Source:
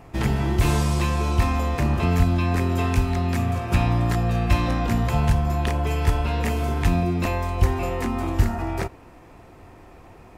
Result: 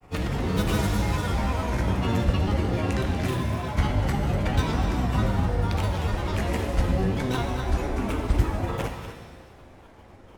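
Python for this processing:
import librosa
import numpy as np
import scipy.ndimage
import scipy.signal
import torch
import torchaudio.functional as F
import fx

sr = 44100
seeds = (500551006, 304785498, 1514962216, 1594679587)

y = fx.granulator(x, sr, seeds[0], grain_ms=100.0, per_s=20.0, spray_ms=100.0, spread_st=7)
y = y + 10.0 ** (-11.5 / 20.0) * np.pad(y, (int(242 * sr / 1000.0), 0))[:len(y)]
y = fx.rev_shimmer(y, sr, seeds[1], rt60_s=1.4, semitones=7, shimmer_db=-8, drr_db=4.5)
y = F.gain(torch.from_numpy(y), -3.5).numpy()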